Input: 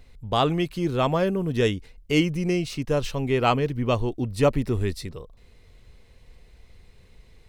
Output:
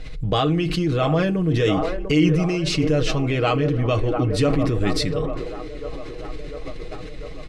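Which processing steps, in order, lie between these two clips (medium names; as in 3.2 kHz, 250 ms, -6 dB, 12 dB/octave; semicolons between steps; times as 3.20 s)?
low-pass 6.5 kHz 12 dB/octave; band-stop 920 Hz, Q 5.3; comb 6.4 ms, depth 67%; in parallel at -2.5 dB: peak limiter -17 dBFS, peak gain reduction 11.5 dB; on the sum: compression 3:1, threshold -30 dBFS, peak gain reduction 15 dB; on a send: feedback echo behind a band-pass 695 ms, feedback 69%, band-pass 720 Hz, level -9 dB; on the sum: FDN reverb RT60 0.48 s, low-frequency decay 1.55×, high-frequency decay 0.7×, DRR 14.5 dB; decay stretcher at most 25 dB/s; trim +8 dB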